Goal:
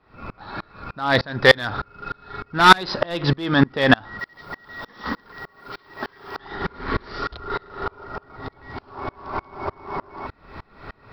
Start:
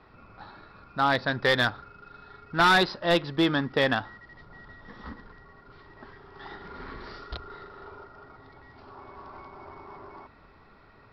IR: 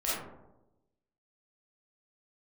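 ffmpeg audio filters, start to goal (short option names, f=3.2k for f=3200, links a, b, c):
-filter_complex "[0:a]asettb=1/sr,asplit=3[a][b][c];[a]atrim=end=4.194[d];[b]atrim=start=4.19:end=6.37,asetpts=PTS-STARTPTS,afade=t=in:d=0.004:c=qsin,afade=t=out:st=2.176:d=0.004:c=qsin,aemphasis=mode=production:type=bsi[e];[c]atrim=start=6.366[f];[d][e]acrossfade=d=0.004:c1=hsin:c2=qsin[g];[g][f]acrossfade=d=0.004:c1=qsin:c2=hsin,alimiter=level_in=22dB:limit=-1dB:release=50:level=0:latency=1,aeval=exprs='val(0)*pow(10,-31*if(lt(mod(-3.3*n/s,1),2*abs(-3.3)/1000),1-mod(-3.3*n/s,1)/(2*abs(-3.3)/1000),(mod(-3.3*n/s,1)-2*abs(-3.3)/1000)/(1-2*abs(-3.3)/1000))/20)':c=same"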